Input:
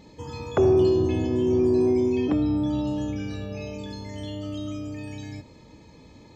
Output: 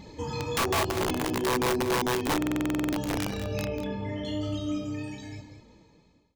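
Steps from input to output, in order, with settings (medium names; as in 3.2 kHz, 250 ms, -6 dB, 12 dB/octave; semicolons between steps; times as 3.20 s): fade out at the end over 2.09 s; 0.98–1.77 s: high-pass 150 Hz 6 dB/octave; compression 4:1, threshold -29 dBFS, peak gain reduction 11.5 dB; saturation -18.5 dBFS, distortion -30 dB; flange 1.1 Hz, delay 0.8 ms, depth 6.5 ms, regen -22%; integer overflow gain 29 dB; 3.65–4.25 s: Savitzky-Golay filter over 25 samples; delay 193 ms -10.5 dB; buffer glitch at 2.37 s, samples 2048, times 11; trim +7.5 dB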